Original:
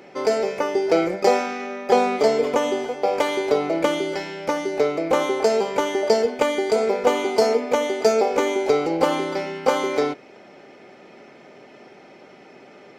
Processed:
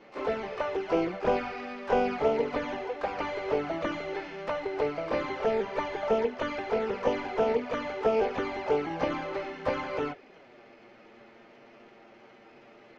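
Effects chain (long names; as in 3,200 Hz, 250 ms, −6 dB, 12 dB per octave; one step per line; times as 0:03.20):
variable-slope delta modulation 16 kbit/s
flanger swept by the level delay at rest 10.1 ms, full sweep at −15 dBFS
pitch-shifted copies added +12 semitones −12 dB
level −4.5 dB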